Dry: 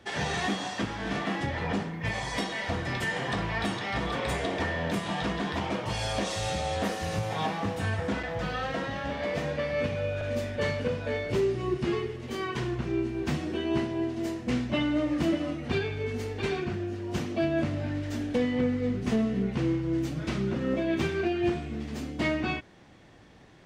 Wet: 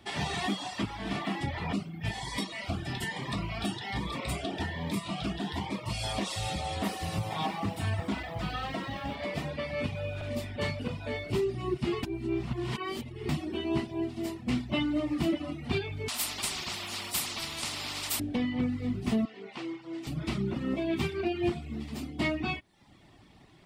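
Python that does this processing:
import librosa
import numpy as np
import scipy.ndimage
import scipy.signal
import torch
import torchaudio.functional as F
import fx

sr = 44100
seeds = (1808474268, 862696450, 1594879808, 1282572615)

y = fx.notch_cascade(x, sr, direction='rising', hz=1.2, at=(1.73, 6.04))
y = fx.echo_crushed(y, sr, ms=92, feedback_pct=35, bits=10, wet_db=-11.0, at=(6.77, 9.15))
y = fx.spectral_comp(y, sr, ratio=10.0, at=(16.08, 18.2))
y = fx.bandpass_edges(y, sr, low_hz=480.0, high_hz=7000.0, at=(19.25, 20.07))
y = fx.edit(y, sr, fx.reverse_span(start_s=12.03, length_s=1.26), tone=tone)
y = fx.graphic_eq_31(y, sr, hz=(500, 1600, 6300), db=(-11, -9, -8))
y = fx.dereverb_blind(y, sr, rt60_s=0.63)
y = fx.high_shelf(y, sr, hz=5300.0, db=5.0)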